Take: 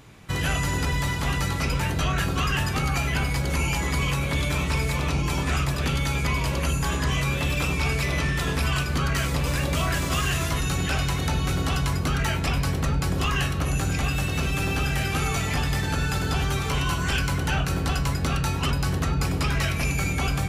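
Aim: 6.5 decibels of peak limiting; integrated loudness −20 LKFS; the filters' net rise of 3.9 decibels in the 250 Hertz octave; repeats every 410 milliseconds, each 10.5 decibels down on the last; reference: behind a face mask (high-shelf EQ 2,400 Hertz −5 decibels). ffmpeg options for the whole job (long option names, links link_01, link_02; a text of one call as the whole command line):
ffmpeg -i in.wav -af "equalizer=frequency=250:width_type=o:gain=6,alimiter=limit=-17dB:level=0:latency=1,highshelf=frequency=2400:gain=-5,aecho=1:1:410|820|1230:0.299|0.0896|0.0269,volume=6.5dB" out.wav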